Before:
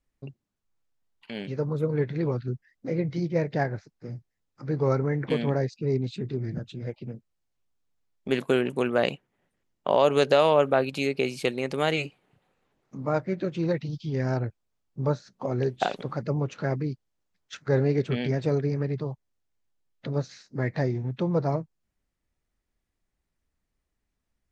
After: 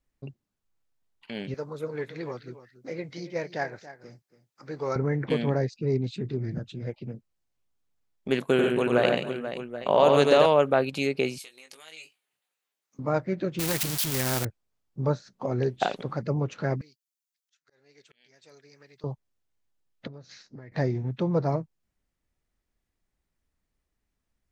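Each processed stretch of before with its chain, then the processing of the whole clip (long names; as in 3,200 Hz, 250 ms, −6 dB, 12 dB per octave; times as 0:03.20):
0:01.54–0:04.96: high-pass filter 730 Hz 6 dB per octave + high-shelf EQ 4,800 Hz +6 dB + single-tap delay 281 ms −15 dB
0:08.42–0:10.46: notch filter 4,900 Hz, Q 8.1 + multi-tap delay 91/140/275/485/779/787 ms −4/−6.5/−17/−11/−17/−17 dB
0:11.38–0:12.99: downward compressor 12 to 1, threshold −27 dBFS + first difference + double-tracking delay 19 ms −6 dB
0:13.59–0:14.45: spike at every zero crossing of −25.5 dBFS + low-shelf EQ 300 Hz +7.5 dB + every bin compressed towards the loudest bin 2 to 1
0:16.81–0:19.04: first difference + volume swells 714 ms
0:20.07–0:20.72: low-pass filter 6,600 Hz 24 dB per octave + downward compressor 12 to 1, threshold −40 dBFS
whole clip: no processing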